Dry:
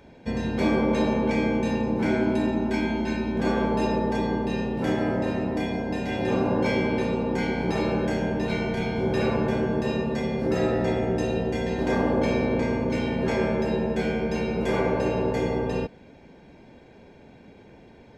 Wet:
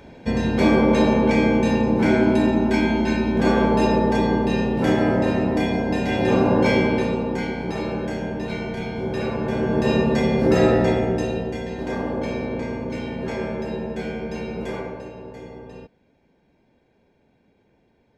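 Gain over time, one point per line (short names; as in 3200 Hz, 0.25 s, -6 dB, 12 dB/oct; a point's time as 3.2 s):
6.76 s +6 dB
7.62 s -1.5 dB
9.38 s -1.5 dB
9.93 s +7.5 dB
10.7 s +7.5 dB
11.69 s -3 dB
14.63 s -3 dB
15.12 s -13 dB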